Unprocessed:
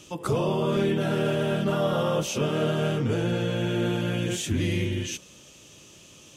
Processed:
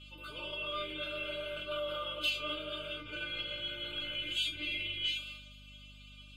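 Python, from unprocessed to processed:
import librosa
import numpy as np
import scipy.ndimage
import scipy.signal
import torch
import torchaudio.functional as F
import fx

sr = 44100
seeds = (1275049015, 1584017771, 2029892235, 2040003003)

y = fx.transient(x, sr, attack_db=-5, sustain_db=11)
y = fx.fixed_phaser(y, sr, hz=1200.0, stages=8)
y = fx.comb_fb(y, sr, f0_hz=300.0, decay_s=0.22, harmonics='all', damping=0.0, mix_pct=100)
y = fx.add_hum(y, sr, base_hz=50, snr_db=10)
y = fx.band_shelf(y, sr, hz=2800.0, db=15.0, octaves=2.3)
y = y * librosa.db_to_amplitude(-2.0)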